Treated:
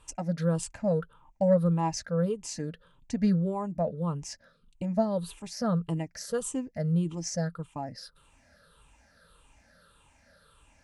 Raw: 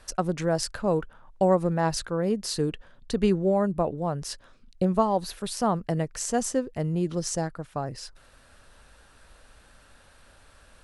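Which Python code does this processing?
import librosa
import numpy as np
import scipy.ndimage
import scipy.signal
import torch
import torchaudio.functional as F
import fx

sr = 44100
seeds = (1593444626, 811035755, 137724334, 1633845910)

y = fx.spec_ripple(x, sr, per_octave=0.66, drift_hz=-1.7, depth_db=15)
y = fx.peak_eq(y, sr, hz=170.0, db=6.5, octaves=0.23)
y = fx.notch_comb(y, sr, f0_hz=370.0)
y = F.gain(torch.from_numpy(y), -7.0).numpy()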